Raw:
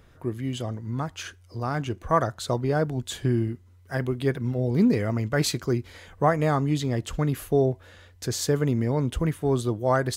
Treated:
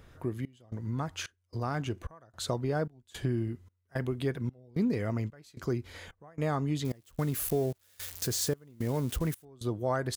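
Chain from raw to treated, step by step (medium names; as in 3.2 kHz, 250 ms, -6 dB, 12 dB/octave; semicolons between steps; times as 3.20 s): 6.85–9.45 s: zero-crossing glitches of -27 dBFS; compression 2:1, threshold -32 dBFS, peak gain reduction 9.5 dB; trance gate "xxxxx...x" 167 bpm -24 dB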